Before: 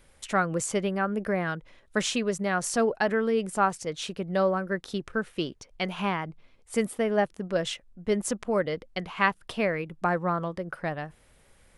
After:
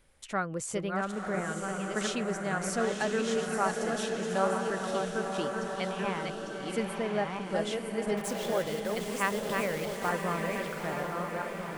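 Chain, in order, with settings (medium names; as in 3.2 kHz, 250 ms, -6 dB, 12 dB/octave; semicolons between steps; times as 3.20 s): backward echo that repeats 672 ms, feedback 43%, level -4 dB; 8.17–10.10 s: word length cut 6-bit, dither none; echo that smears into a reverb 979 ms, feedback 48%, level -4.5 dB; trim -6.5 dB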